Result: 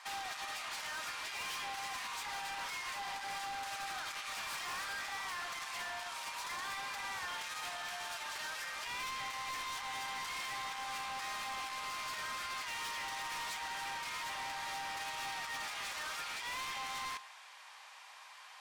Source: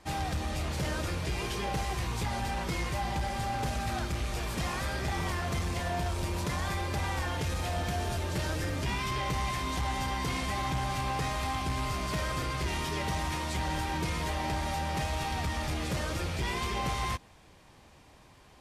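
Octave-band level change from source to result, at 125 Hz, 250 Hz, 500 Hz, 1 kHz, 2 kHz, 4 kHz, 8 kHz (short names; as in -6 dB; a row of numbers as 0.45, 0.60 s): -31.5, -24.5, -16.5, -6.5, -3.0, -3.0, -4.0 dB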